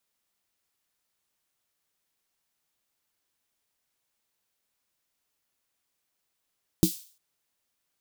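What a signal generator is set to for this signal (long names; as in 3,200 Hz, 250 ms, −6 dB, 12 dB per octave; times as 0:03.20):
synth snare length 0.35 s, tones 180 Hz, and 320 Hz, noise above 3,600 Hz, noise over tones −12 dB, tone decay 0.11 s, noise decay 0.45 s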